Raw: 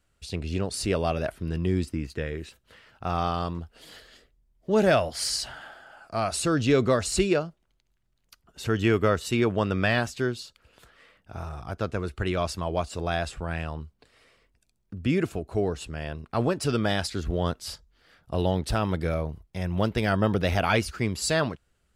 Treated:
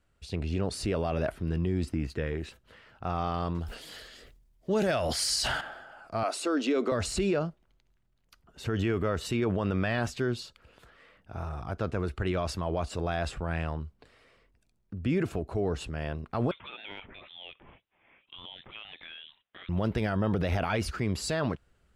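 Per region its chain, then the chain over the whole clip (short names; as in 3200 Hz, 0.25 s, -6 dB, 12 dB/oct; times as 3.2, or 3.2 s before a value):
3.55–5.61 high shelf 2900 Hz +11 dB + sustainer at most 68 dB/s
6.23–6.92 elliptic high-pass 260 Hz, stop band 50 dB + notch 1700 Hz, Q 21
16.51–19.69 HPF 780 Hz + compressor 2.5:1, threshold -41 dBFS + inverted band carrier 3900 Hz
whole clip: transient shaper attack -1 dB, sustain +4 dB; high shelf 3700 Hz -9 dB; limiter -19.5 dBFS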